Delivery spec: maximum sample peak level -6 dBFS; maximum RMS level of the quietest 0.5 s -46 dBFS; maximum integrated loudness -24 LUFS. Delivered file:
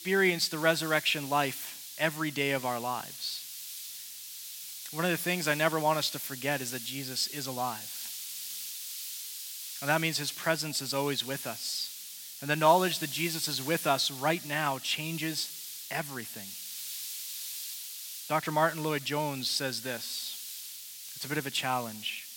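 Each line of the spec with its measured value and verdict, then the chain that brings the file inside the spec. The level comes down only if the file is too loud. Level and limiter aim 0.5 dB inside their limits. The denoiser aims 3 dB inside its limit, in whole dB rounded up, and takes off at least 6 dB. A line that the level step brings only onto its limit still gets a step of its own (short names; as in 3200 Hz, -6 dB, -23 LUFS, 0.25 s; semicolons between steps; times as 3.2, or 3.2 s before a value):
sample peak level -10.5 dBFS: OK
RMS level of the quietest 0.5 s -44 dBFS: fail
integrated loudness -31.5 LUFS: OK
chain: denoiser 6 dB, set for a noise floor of -44 dBFS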